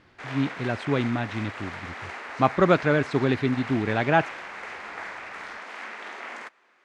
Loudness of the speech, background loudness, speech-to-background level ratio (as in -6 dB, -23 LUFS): -25.0 LUFS, -37.0 LUFS, 12.0 dB